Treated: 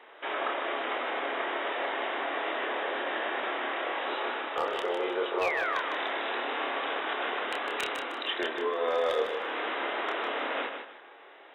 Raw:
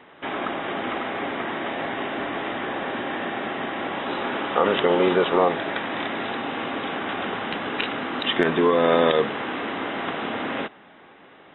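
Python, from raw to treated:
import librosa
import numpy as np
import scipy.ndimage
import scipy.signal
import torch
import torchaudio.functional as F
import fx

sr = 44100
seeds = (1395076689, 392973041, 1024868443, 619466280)

y = scipy.signal.sosfilt(scipy.signal.butter(4, 390.0, 'highpass', fs=sr, output='sos'), x)
y = fx.rider(y, sr, range_db=4, speed_s=0.5)
y = fx.spec_paint(y, sr, seeds[0], shape='fall', start_s=5.41, length_s=0.39, low_hz=970.0, high_hz=2700.0, level_db=-26.0)
y = 10.0 ** (-13.5 / 20.0) * (np.abs((y / 10.0 ** (-13.5 / 20.0) + 3.0) % 4.0 - 2.0) - 1.0)
y = fx.doubler(y, sr, ms=28.0, db=-4.5)
y = fx.echo_feedback(y, sr, ms=154, feedback_pct=29, wet_db=-7.0)
y = y * 10.0 ** (-7.5 / 20.0)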